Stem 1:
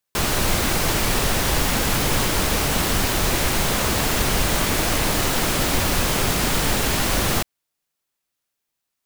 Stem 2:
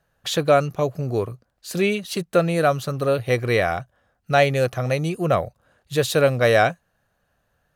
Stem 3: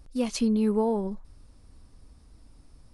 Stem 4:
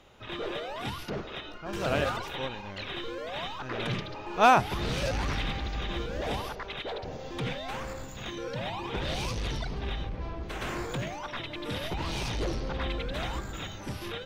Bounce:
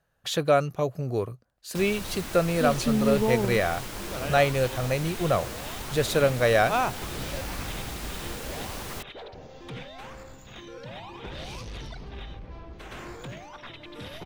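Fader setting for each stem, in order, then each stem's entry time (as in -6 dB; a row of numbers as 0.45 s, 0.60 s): -16.5 dB, -4.5 dB, -0.5 dB, -6.0 dB; 1.60 s, 0.00 s, 2.45 s, 2.30 s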